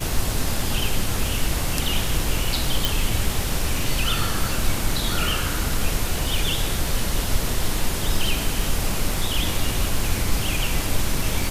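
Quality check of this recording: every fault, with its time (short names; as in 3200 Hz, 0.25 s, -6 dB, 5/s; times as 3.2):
crackle 56/s -28 dBFS
2.85 pop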